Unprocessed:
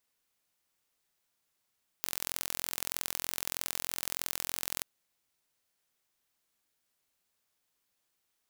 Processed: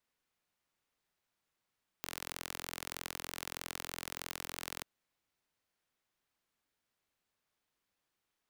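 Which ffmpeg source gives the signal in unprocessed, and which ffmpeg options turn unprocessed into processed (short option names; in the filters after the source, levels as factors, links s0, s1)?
-f lavfi -i "aevalsrc='0.562*eq(mod(n,1021),0)*(0.5+0.5*eq(mod(n,2042),0))':d=2.79:s=44100"
-filter_complex "[0:a]acrossover=split=380|460|1900[s0][s1][s2][s3];[s1]acrusher=samples=27:mix=1:aa=0.000001[s4];[s0][s4][s2][s3]amix=inputs=4:normalize=0,highshelf=f=4500:g=-11.5"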